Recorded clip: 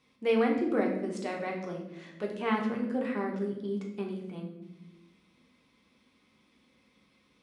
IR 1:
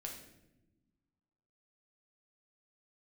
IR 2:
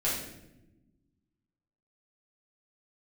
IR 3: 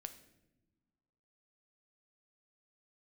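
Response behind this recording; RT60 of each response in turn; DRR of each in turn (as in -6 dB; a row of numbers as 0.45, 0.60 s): 1; not exponential, 0.95 s, not exponential; -0.5, -9.0, 8.0 dB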